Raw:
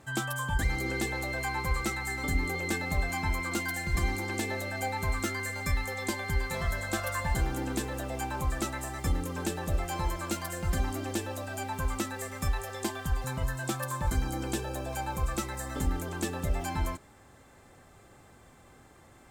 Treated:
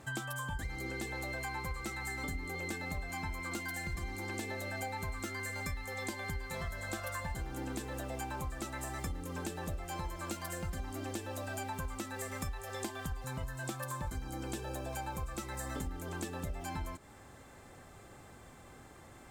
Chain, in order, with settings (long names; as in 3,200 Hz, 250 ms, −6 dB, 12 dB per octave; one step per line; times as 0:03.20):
downward compressor, threshold −38 dBFS, peak gain reduction 15 dB
level +1.5 dB